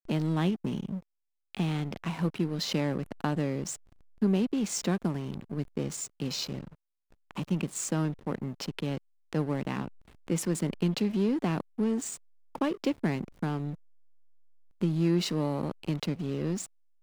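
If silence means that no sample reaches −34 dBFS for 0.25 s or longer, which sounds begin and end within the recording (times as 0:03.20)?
0:01.55–0:03.75
0:04.22–0:06.64
0:07.31–0:08.98
0:09.33–0:09.88
0:10.28–0:12.16
0:12.55–0:13.74
0:14.81–0:16.65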